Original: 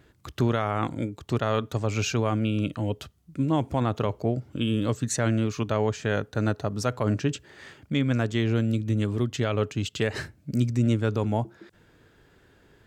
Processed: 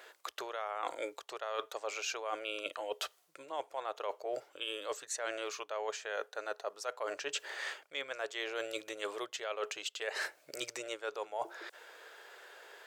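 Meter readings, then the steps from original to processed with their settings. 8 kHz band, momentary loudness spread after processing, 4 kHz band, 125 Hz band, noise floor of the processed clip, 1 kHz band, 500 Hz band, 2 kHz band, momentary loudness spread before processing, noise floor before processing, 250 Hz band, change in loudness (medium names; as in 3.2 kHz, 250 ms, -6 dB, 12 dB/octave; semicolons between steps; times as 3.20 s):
-6.0 dB, 6 LU, -4.0 dB, under -40 dB, -68 dBFS, -7.5 dB, -10.0 dB, -4.5 dB, 6 LU, -60 dBFS, -27.0 dB, -12.5 dB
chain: inverse Chebyshev high-pass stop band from 250 Hz, stop band 40 dB; reverse; compression 10:1, threshold -44 dBFS, peak gain reduction 20.5 dB; reverse; trim +9 dB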